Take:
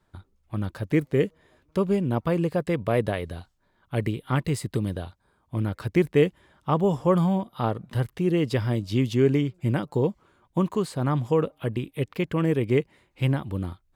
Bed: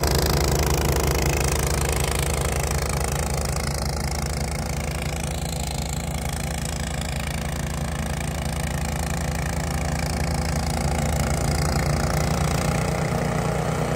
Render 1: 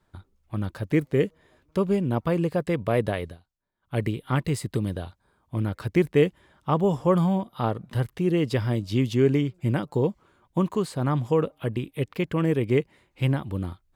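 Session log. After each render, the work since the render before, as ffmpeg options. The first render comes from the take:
-filter_complex "[0:a]asplit=3[a][b][c];[a]atrim=end=3.38,asetpts=PTS-STARTPTS,afade=t=out:st=3.24:d=0.14:silence=0.133352[d];[b]atrim=start=3.38:end=3.81,asetpts=PTS-STARTPTS,volume=-17.5dB[e];[c]atrim=start=3.81,asetpts=PTS-STARTPTS,afade=t=in:d=0.14:silence=0.133352[f];[d][e][f]concat=n=3:v=0:a=1"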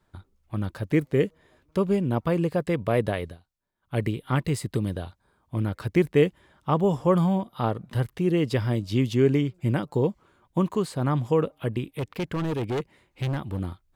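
-filter_complex "[0:a]asettb=1/sr,asplit=3[a][b][c];[a]atrim=end=11.964[d];[b]atrim=start=11.96:end=13.6,asetpts=PTS-STARTPTS,afade=t=in:d=0.004:c=qsin,afade=t=out:st=1.636:d=0.004:c=qsin,asoftclip=type=hard:threshold=-24dB[e];[c]atrim=start=13.596[f];[d][e]acrossfade=d=0.004:c1=hsin:c2=qsin[g];[g][f]acrossfade=d=0.004:c1=qsin:c2=hsin"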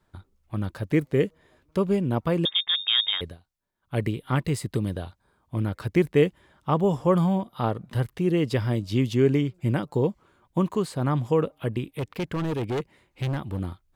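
-filter_complex "[0:a]asettb=1/sr,asplit=3[a][b][c];[a]atrim=end=2.454[d];[b]atrim=start=2.45:end=3.21,asetpts=PTS-STARTPTS,afade=t=in:d=0.004:c=qsin,afade=t=out:st=0.756:d=0.004:c=qsin,lowpass=f=3.2k:t=q:w=0.5098,lowpass=f=3.2k:t=q:w=0.6013,lowpass=f=3.2k:t=q:w=0.9,lowpass=f=3.2k:t=q:w=2.563,afreqshift=-3800[e];[c]atrim=start=3.206[f];[d][e]acrossfade=d=0.004:c1=hsin:c2=qsin[g];[g][f]acrossfade=d=0.004:c1=qsin:c2=hsin"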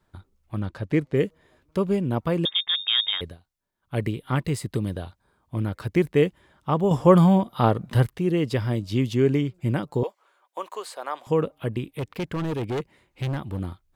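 -filter_complex "[0:a]asettb=1/sr,asplit=3[a][b][c];[a]atrim=end=0.604[d];[b]atrim=start=0.6:end=1.17,asetpts=PTS-STARTPTS,afade=t=in:d=0.004:c=qsin,afade=t=out:st=0.566:d=0.004:c=qsin,adynamicsmooth=sensitivity=5.5:basefreq=7.2k[e];[c]atrim=start=1.166[f];[d][e]acrossfade=d=0.004:c1=hsin:c2=qsin[g];[g][f]acrossfade=d=0.004:c1=qsin:c2=hsin,asettb=1/sr,asplit=3[h][i][j];[h]atrim=end=10.034[k];[i]atrim=start=10.03:end=11.27,asetpts=PTS-STARTPTS,afade=t=in:d=0.004:c=qsin,afade=t=out:st=1.236:d=0.004:c=qsin,highpass=f=530:w=0.5412,highpass=f=530:w=1.3066[l];[j]atrim=start=11.266[m];[k][l]acrossfade=d=0.004:c1=hsin:c2=qsin[n];[n][m]acrossfade=d=0.004:c1=qsin:c2=hsin,asplit=3[o][p][q];[o]atrim=end=6.912[r];[p]atrim=start=6.908:end=8.092,asetpts=PTS-STARTPTS,volume=6dB[s];[q]atrim=start=8.088[t];[r][s]acrossfade=d=0.004:c1=hsin:c2=hsin[u];[u][t]acrossfade=d=0.004:c1=hsin:c2=hsin"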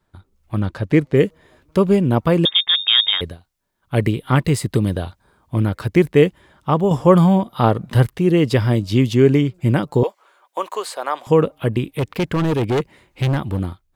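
-af "dynaudnorm=f=110:g=7:m=9dB"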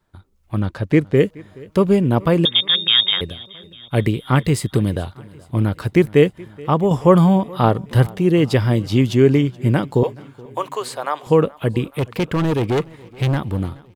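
-af "aecho=1:1:425|850|1275|1700:0.0708|0.0418|0.0246|0.0145"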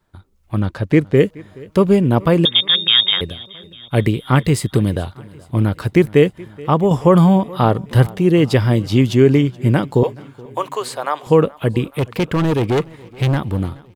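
-af "volume=2dB,alimiter=limit=-2dB:level=0:latency=1"

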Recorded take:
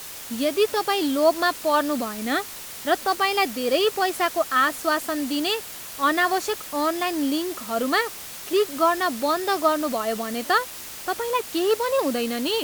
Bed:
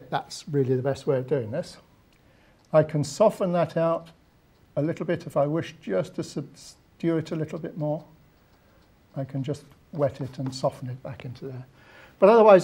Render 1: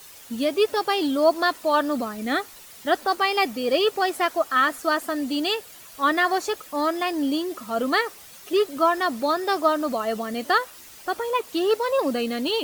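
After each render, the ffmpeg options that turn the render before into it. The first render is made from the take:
-af "afftdn=nr=10:nf=-38"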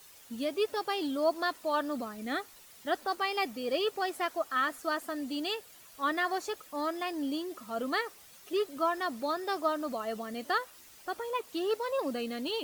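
-af "volume=-9.5dB"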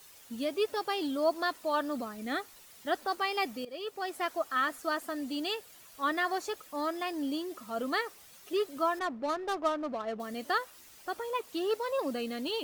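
-filter_complex "[0:a]asettb=1/sr,asplit=3[a][b][c];[a]atrim=end=8.994[d];[b]atrim=start=8.99:end=10.2,asetpts=PTS-STARTPTS,afade=t=in:d=0.004:c=qsin,afade=t=out:st=1.206:d=0.004:c=qsin,adynamicsmooth=sensitivity=7:basefreq=710[e];[c]atrim=start=10.196[f];[d][e]acrossfade=d=0.004:c1=hsin:c2=qsin[g];[g][f]acrossfade=d=0.004:c1=qsin:c2=hsin,asplit=2[h][i];[h]atrim=end=3.65,asetpts=PTS-STARTPTS,afade=t=out:st=3.646:d=0.004:c=hsin:silence=0.133352[j];[i]atrim=start=3.65,asetpts=PTS-STARTPTS,afade=t=in:d=0.64:silence=0.133352[k];[j][k]concat=n=2:v=0:a=1"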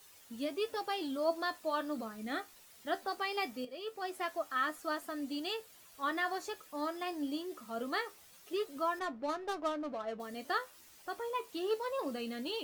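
-af "flanger=delay=9.7:depth=4.3:regen=60:speed=0.21:shape=triangular"

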